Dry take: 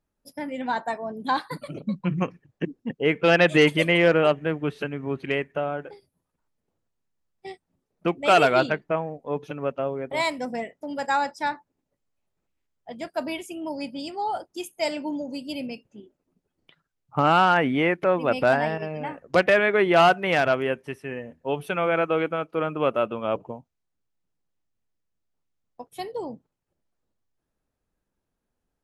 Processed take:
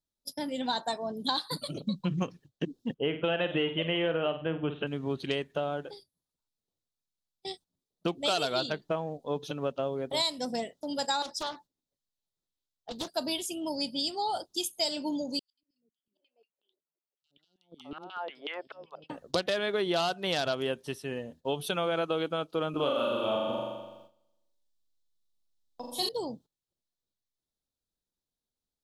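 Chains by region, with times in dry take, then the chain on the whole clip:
0:02.94–0:04.87: elliptic low-pass filter 3,000 Hz + flutter between parallel walls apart 8.4 metres, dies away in 0.3 s
0:11.22–0:13.09: downward compressor, threshold −29 dBFS + highs frequency-modulated by the lows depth 0.59 ms
0:15.39–0:19.10: auto-filter band-pass saw down 5.4 Hz 380–3,000 Hz + volume swells 656 ms + three-band delay without the direct sound highs, lows, mids 130/670 ms, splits 340/4,300 Hz
0:22.70–0:26.09: double-tracking delay 38 ms −4 dB + flutter between parallel walls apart 7.1 metres, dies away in 1.2 s
whole clip: noise gate −50 dBFS, range −12 dB; high shelf with overshoot 2,900 Hz +9 dB, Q 3; downward compressor 6 to 1, threshold −24 dBFS; level −2 dB

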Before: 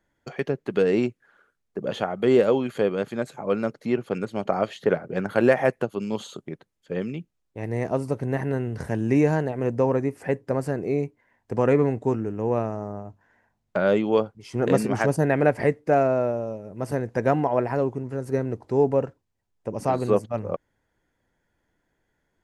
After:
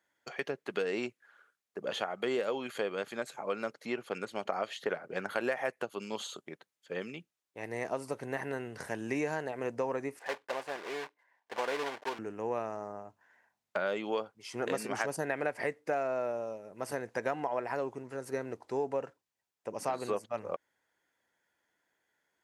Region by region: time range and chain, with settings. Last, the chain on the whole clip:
0:10.19–0:12.19: one scale factor per block 3 bits + resonant band-pass 1,000 Hz, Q 0.86 + notch filter 1,300 Hz, Q 7.7
whole clip: high-pass filter 1,100 Hz 6 dB per octave; downward compressor 4 to 1, threshold −29 dBFS

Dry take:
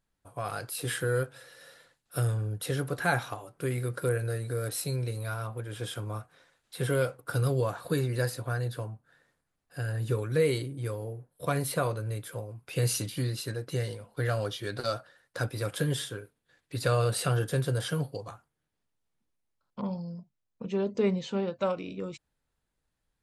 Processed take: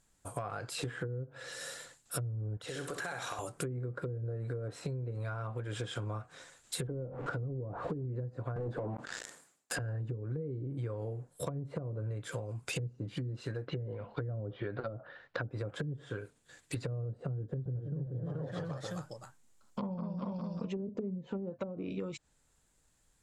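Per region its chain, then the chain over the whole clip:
0:02.57–0:03.39: bass and treble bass −10 dB, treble −4 dB + downward compressor 5 to 1, threshold −43 dBFS + flutter between parallel walls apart 10.9 metres, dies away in 0.49 s
0:06.87–0:08.05: converter with a step at zero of −36 dBFS + low-pass filter 1,100 Hz 6 dB per octave + parametric band 120 Hz −4 dB 1.5 octaves
0:08.56–0:09.79: high-pass filter 250 Hz + leveller curve on the samples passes 5 + level that may fall only so fast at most 100 dB per second
0:13.67–0:15.43: low-pass filter 3,700 Hz 24 dB per octave + parametric band 810 Hz +3 dB 2.7 octaves
0:17.32–0:20.89: single-tap delay 431 ms −4.5 dB + delay with pitch and tempo change per echo 336 ms, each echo +1 semitone, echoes 2, each echo −6 dB
whole clip: treble cut that deepens with the level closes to 300 Hz, closed at −25 dBFS; parametric band 7,400 Hz +14 dB 0.58 octaves; downward compressor 12 to 1, threshold −42 dBFS; level +7.5 dB

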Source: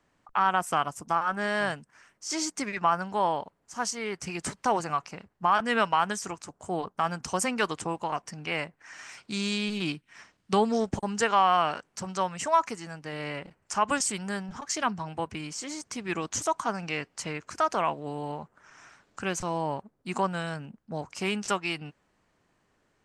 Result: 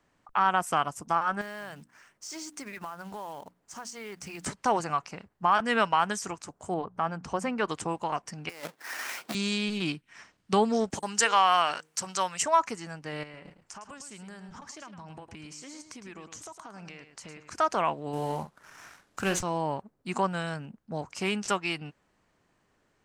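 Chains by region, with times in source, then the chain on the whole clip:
0:01.41–0:04.46: mains-hum notches 60/120/180/240/300 Hz + downward compressor 4 to 1, threshold −38 dBFS + floating-point word with a short mantissa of 2 bits
0:06.74–0:07.68: low-pass filter 1,400 Hz 6 dB per octave + mains-hum notches 60/120/180 Hz + upward compression, threshold −38 dBFS
0:08.49–0:09.35: each half-wave held at its own peak + high-pass filter 300 Hz + compressor whose output falls as the input rises −35 dBFS, ratio −0.5
0:10.90–0:12.43: spectral tilt +3 dB per octave + hum removal 156 Hz, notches 3
0:13.23–0:17.52: downward compressor 12 to 1, threshold −41 dBFS + single-tap delay 108 ms −10 dB
0:18.13–0:19.41: variable-slope delta modulation 64 kbit/s + double-tracking delay 46 ms −10.5 dB + leveller curve on the samples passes 1
whole clip: no processing

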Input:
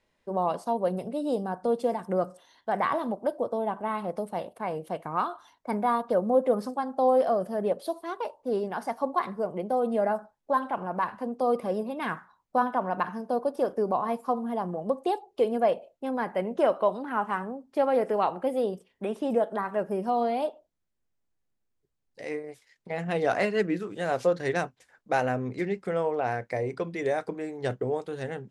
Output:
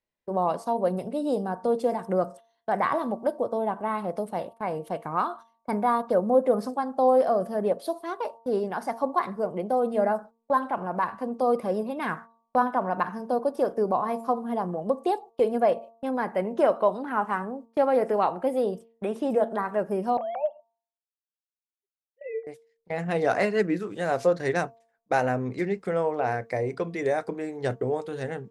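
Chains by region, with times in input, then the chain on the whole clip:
0:20.17–0:22.47: three sine waves on the formant tracks + drawn EQ curve 250 Hz 0 dB, 1,800 Hz −8 dB, 8,000 Hz +13 dB
whole clip: noise gate −43 dBFS, range −19 dB; hum removal 228.7 Hz, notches 5; dynamic equaliser 3,100 Hz, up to −5 dB, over −52 dBFS, Q 2.7; level +2 dB

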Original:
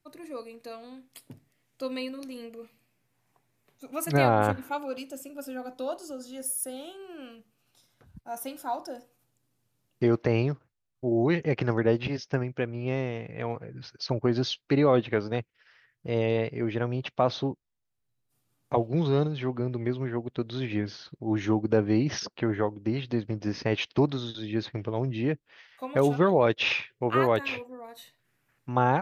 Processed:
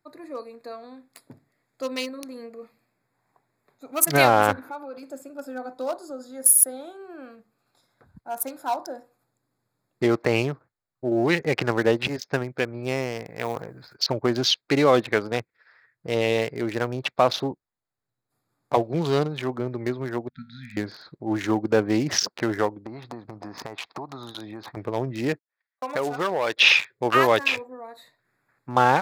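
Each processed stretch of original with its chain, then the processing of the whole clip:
0:04.59–0:05.03: downward compressor 2.5 to 1, threshold −39 dBFS + parametric band 7,700 Hz −11 dB 0.4 octaves
0:13.24–0:13.96: mu-law and A-law mismatch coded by A + high-shelf EQ 11,000 Hz +5.5 dB + level that may fall only so fast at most 58 dB per second
0:20.29–0:20.77: linear-phase brick-wall band-stop 260–1,300 Hz + tuned comb filter 79 Hz, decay 0.47 s
0:22.86–0:24.77: flat-topped bell 930 Hz +10 dB 1.1 octaves + downward compressor 8 to 1, threshold −35 dBFS
0:25.33–0:26.55: noise gate −47 dBFS, range −42 dB + mid-hump overdrive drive 11 dB, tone 7,600 Hz, clips at −10 dBFS + downward compressor 2 to 1, threshold −32 dBFS
whole clip: adaptive Wiener filter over 15 samples; spectral tilt +3 dB per octave; level +7 dB

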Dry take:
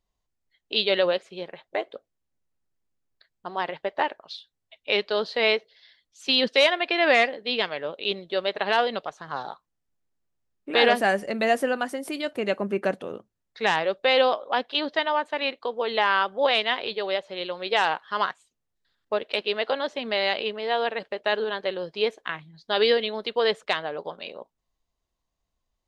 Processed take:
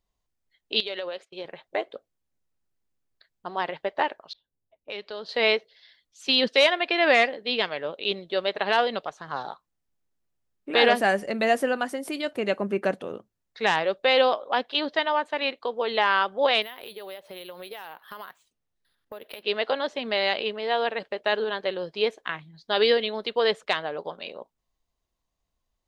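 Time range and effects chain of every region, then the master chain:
0:00.80–0:01.45: parametric band 130 Hz −13.5 dB 1.3 octaves + noise gate −48 dBFS, range −24 dB + downward compressor, threshold −29 dBFS
0:04.33–0:05.29: low-pass that shuts in the quiet parts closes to 500 Hz, open at −21.5 dBFS + downward compressor 2 to 1, threshold −41 dBFS
0:16.62–0:19.43: downward compressor 8 to 1, threshold −36 dBFS + bad sample-rate conversion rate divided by 3×, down filtered, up hold
whole clip: no processing

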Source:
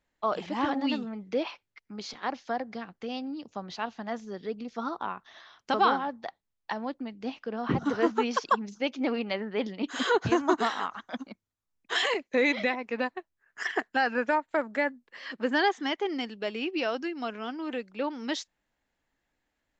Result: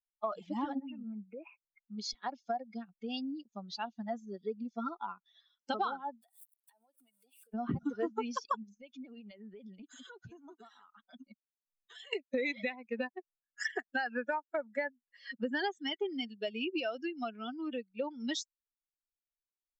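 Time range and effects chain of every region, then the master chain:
0:00.79–0:01.97: Chebyshev low-pass filter 2,600 Hz, order 5 + downward compressor 3 to 1, threshold −37 dBFS
0:06.22–0:07.54: converter with a step at zero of −42.5 dBFS + high-pass filter 440 Hz + downward compressor 4 to 1, threshold −50 dBFS
0:08.63–0:12.13: downward compressor 8 to 1, threshold −38 dBFS + high-shelf EQ 7,000 Hz −5.5 dB
whole clip: spectral dynamics exaggerated over time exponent 2; downward compressor 5 to 1, threshold −40 dBFS; level +7.5 dB

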